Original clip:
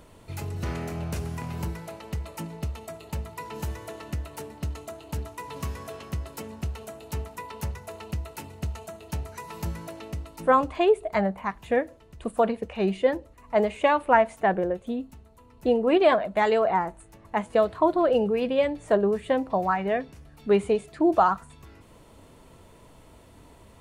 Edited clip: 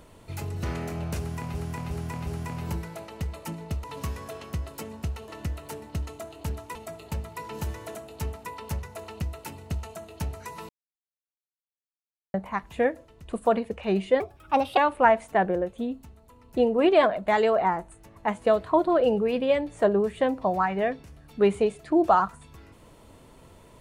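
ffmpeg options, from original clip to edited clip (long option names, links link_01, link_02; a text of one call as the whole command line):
ffmpeg -i in.wav -filter_complex "[0:a]asplit=12[link_01][link_02][link_03][link_04][link_05][link_06][link_07][link_08][link_09][link_10][link_11][link_12];[link_01]atrim=end=1.552[link_13];[link_02]atrim=start=1.188:end=1.552[link_14];[link_03]atrim=start=1.188:end=1.552[link_15];[link_04]atrim=start=1.188:end=2.762[link_16];[link_05]atrim=start=5.428:end=6.872[link_17];[link_06]atrim=start=3.958:end=5.432[link_18];[link_07]atrim=start=2.758:end=3.962[link_19];[link_08]atrim=start=6.868:end=9.61,asetpts=PTS-STARTPTS,afade=type=out:start_time=2.738:duration=0.004:curve=hsin[link_20];[link_09]atrim=start=9.61:end=11.26,asetpts=PTS-STARTPTS,volume=0[link_21];[link_10]atrim=start=11.26:end=13.124,asetpts=PTS-STARTPTS,afade=type=in:duration=0.004:curve=hsin[link_22];[link_11]atrim=start=13.12:end=13.86,asetpts=PTS-STARTPTS,asetrate=56889,aresample=44100[link_23];[link_12]atrim=start=13.856[link_24];[link_13][link_14]acrossfade=duration=0.004:curve1=hsin:curve2=hsin[link_25];[link_25][link_15]acrossfade=duration=0.004:curve1=hsin:curve2=hsin[link_26];[link_26][link_16]acrossfade=duration=0.004:curve1=hsin:curve2=hsin[link_27];[link_27][link_17]acrossfade=duration=0.004:curve1=hsin:curve2=hsin[link_28];[link_28][link_18]acrossfade=duration=0.004:curve1=hsin:curve2=hsin[link_29];[link_29][link_19]acrossfade=duration=0.004:curve1=hsin:curve2=hsin[link_30];[link_20][link_21][link_22]concat=n=3:v=0:a=1[link_31];[link_30][link_31]acrossfade=duration=0.004:curve1=hsin:curve2=hsin[link_32];[link_32][link_23]acrossfade=duration=0.004:curve1=hsin:curve2=hsin[link_33];[link_33][link_24]acrossfade=duration=0.004:curve1=hsin:curve2=hsin" out.wav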